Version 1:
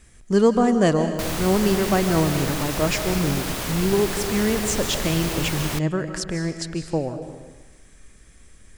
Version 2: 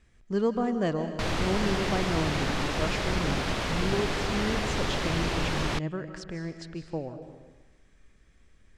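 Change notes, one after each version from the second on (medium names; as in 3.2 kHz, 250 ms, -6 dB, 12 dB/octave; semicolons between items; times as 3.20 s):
speech -9.5 dB; master: add low-pass 4.4 kHz 12 dB/octave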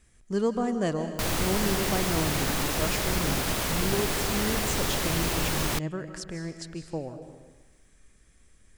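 master: remove low-pass 4.4 kHz 12 dB/octave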